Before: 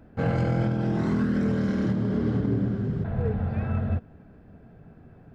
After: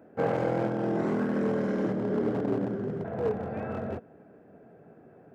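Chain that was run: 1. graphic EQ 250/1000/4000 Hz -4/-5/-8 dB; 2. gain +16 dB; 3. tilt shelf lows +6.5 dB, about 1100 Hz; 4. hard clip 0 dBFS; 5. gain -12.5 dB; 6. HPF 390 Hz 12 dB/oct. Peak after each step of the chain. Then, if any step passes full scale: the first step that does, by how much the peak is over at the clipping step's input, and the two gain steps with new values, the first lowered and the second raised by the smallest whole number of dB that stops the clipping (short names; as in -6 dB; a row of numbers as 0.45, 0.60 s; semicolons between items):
-17.5, -1.5, +5.0, 0.0, -12.5, -15.5 dBFS; step 3, 5.0 dB; step 2 +11 dB, step 5 -7.5 dB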